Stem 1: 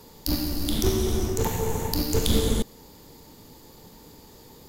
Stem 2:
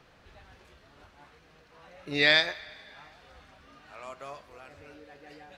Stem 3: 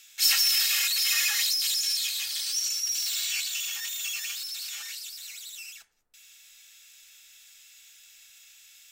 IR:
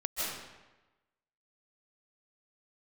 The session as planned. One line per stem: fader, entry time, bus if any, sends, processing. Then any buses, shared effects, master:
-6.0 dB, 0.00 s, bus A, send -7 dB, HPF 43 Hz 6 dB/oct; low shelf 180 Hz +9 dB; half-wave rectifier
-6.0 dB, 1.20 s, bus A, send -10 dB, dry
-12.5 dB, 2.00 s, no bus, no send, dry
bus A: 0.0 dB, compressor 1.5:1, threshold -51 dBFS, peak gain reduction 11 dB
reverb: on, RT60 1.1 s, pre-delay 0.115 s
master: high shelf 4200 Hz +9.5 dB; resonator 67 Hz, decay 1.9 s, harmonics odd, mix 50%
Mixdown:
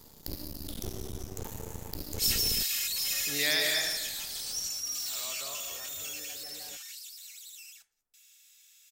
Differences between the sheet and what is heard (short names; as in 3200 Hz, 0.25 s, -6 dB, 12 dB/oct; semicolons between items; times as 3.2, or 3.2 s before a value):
stem 1: send off; master: missing resonator 67 Hz, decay 1.9 s, harmonics odd, mix 50%